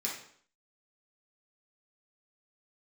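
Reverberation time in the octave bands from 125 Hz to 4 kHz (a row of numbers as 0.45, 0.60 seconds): 0.55, 0.60, 0.60, 0.60, 0.55, 0.55 seconds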